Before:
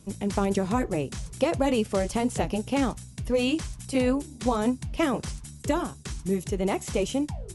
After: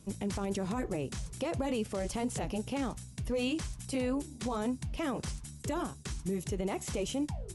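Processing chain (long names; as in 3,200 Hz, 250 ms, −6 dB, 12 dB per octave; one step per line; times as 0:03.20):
brickwall limiter −21.5 dBFS, peak gain reduction 11.5 dB
level −3.5 dB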